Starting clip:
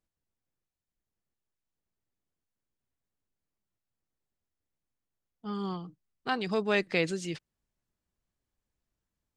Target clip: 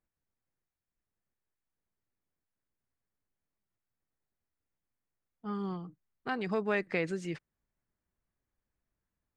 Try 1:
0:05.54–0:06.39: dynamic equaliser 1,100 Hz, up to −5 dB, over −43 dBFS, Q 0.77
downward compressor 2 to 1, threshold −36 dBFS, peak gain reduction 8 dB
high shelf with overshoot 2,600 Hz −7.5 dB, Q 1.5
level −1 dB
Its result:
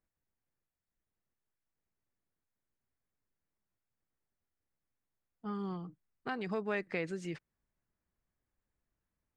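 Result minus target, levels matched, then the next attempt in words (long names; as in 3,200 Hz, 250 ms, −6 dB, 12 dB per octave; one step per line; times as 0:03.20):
downward compressor: peak gain reduction +4.5 dB
0:05.54–0:06.39: dynamic equaliser 1,100 Hz, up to −5 dB, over −43 dBFS, Q 0.77
downward compressor 2 to 1, threshold −27 dBFS, peak gain reduction 3.5 dB
high shelf with overshoot 2,600 Hz −7.5 dB, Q 1.5
level −1 dB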